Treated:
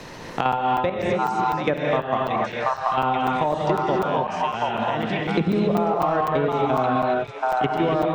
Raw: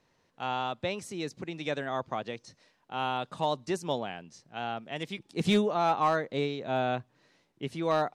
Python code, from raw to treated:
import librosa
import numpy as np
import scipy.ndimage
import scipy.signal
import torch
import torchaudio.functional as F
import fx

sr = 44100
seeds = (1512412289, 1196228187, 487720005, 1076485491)

p1 = fx.env_lowpass_down(x, sr, base_hz=1200.0, full_db=-26.0)
p2 = fx.level_steps(p1, sr, step_db=16)
p3 = p2 + fx.echo_stepped(p2, sr, ms=732, hz=1100.0, octaves=1.4, feedback_pct=70, wet_db=-1, dry=0)
p4 = fx.rev_gated(p3, sr, seeds[0], gate_ms=300, shape='rising', drr_db=-0.5)
p5 = 10.0 ** (-30.5 / 20.0) * np.tanh(p4 / 10.0 ** (-30.5 / 20.0))
p6 = p4 + (p5 * librosa.db_to_amplitude(-11.0))
p7 = fx.buffer_crackle(p6, sr, first_s=0.52, period_s=0.25, block=256, kind='zero')
p8 = fx.band_squash(p7, sr, depth_pct=100)
y = p8 * librosa.db_to_amplitude(8.5)